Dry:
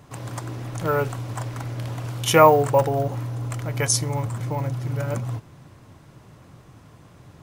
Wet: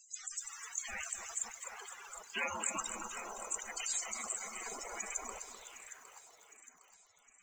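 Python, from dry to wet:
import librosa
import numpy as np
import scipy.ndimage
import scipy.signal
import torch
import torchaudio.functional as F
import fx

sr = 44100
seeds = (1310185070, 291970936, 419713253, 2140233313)

p1 = fx.spec_gate(x, sr, threshold_db=-25, keep='weak')
p2 = fx.high_shelf(p1, sr, hz=2200.0, db=4.0)
p3 = 10.0 ** (-28.5 / 20.0) * (np.abs((p2 / 10.0 ** (-28.5 / 20.0) + 3.0) % 4.0 - 2.0) - 1.0)
p4 = p2 + F.gain(torch.from_numpy(p3), -8.0).numpy()
p5 = fx.filter_sweep_lowpass(p4, sr, from_hz=7400.0, to_hz=140.0, start_s=5.36, end_s=6.96, q=3.2)
p6 = fx.spec_topn(p5, sr, count=32)
p7 = fx.air_absorb(p6, sr, metres=260.0, at=(1.48, 2.37))
p8 = p7 + fx.echo_thinned(p7, sr, ms=760, feedback_pct=54, hz=520.0, wet_db=-13, dry=0)
p9 = fx.echo_crushed(p8, sr, ms=254, feedback_pct=55, bits=9, wet_db=-9)
y = F.gain(torch.from_numpy(p9), -3.0).numpy()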